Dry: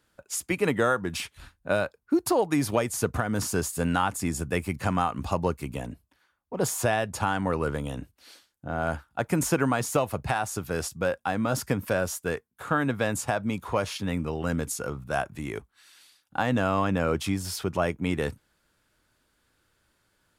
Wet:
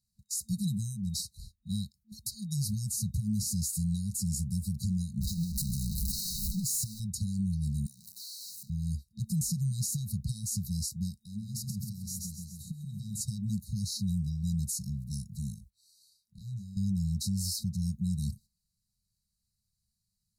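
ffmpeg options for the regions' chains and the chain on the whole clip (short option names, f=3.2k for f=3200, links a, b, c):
-filter_complex "[0:a]asettb=1/sr,asplit=3[a][b][c];[a]atrim=end=5.214[d];[b]atrim=start=5.21:end=7,asetpts=PTS-STARTPTS,afade=t=in:d=0.004:c=qsin,afade=t=out:st=1.786:d=0.004:c=qsin,aeval=exprs='val(0)+0.5*0.0562*sgn(val(0))':c=same,aecho=1:1:5.2:0.42,atrim=end_sample=78939,acompressor=threshold=-29dB:ratio=5:attack=3.2:release=140:knee=1:detection=peak[e];[c]atrim=start=6.996[f];[d][e]acrossfade=d=0.004:c1=hsin:c2=qsin[g];[g][f]acrossfade=d=0.004:c1=qsin:c2=hsin,asettb=1/sr,asplit=3[h][i][j];[h]atrim=end=7.864[k];[i]atrim=start=7.86:end=8.7,asetpts=PTS-STARTPTS,afade=t=in:d=0.004:c=qsin,afade=t=out:st=0.836:d=0.004:c=qsin,aeval=exprs='val(0)+0.5*0.0133*sgn(val(0))':c=same,highpass=400,acompressor=threshold=-42dB:ratio=10:attack=3.2:release=140:knee=1:detection=peak[l];[j]atrim=start=8.696[m];[k][l]acrossfade=d=0.004:c1=hsin:c2=qsin[n];[n][m]acrossfade=d=0.004:c1=qsin:c2=hsin,asettb=1/sr,asplit=3[o][p][q];[o]atrim=end=11.174[r];[p]atrim=start=11.17:end=13.21,asetpts=PTS-STARTPTS,afade=t=in:d=0.004:c=qsin,afade=t=out:st=2.036:d=0.004:c=qsin,aecho=1:1:132|264|396|528|660:0.562|0.236|0.0992|0.0417|0.0175,atrim=end_sample=89964,acompressor=threshold=-32dB:ratio=4:attack=3.2:release=140:knee=1:detection=peak[s];[q]atrim=start=13.206[t];[r][s]acrossfade=d=0.004:c1=hsin:c2=qsin[u];[u][t]acrossfade=d=0.004:c1=qsin:c2=hsin,asettb=1/sr,asplit=3[v][w][x];[v]atrim=end=15.544[y];[w]atrim=start=15.54:end=16.77,asetpts=PTS-STARTPTS,afade=t=in:d=0.004:c=qsin,afade=t=out:st=1.226:d=0.004:c=qsin,asubboost=boost=5:cutoff=140,acompressor=threshold=-39dB:ratio=4:attack=3.2:release=140:knee=1:detection=peak,asplit=2[z][aa];[aa]adelay=25,volume=-2.5dB[ab];[z][ab]amix=inputs=2:normalize=0,atrim=end_sample=54243[ac];[x]atrim=start=16.766[ad];[y][ac]acrossfade=d=0.004:c1=hsin:c2=qsin[ae];[ae][ad]acrossfade=d=0.004:c1=qsin:c2=hsin,agate=range=-11dB:threshold=-49dB:ratio=16:detection=peak,afftfilt=real='re*(1-between(b*sr/4096,220,3800))':imag='im*(1-between(b*sr/4096,220,3800))':win_size=4096:overlap=0.75,alimiter=level_in=2dB:limit=-24dB:level=0:latency=1:release=49,volume=-2dB,volume=2.5dB"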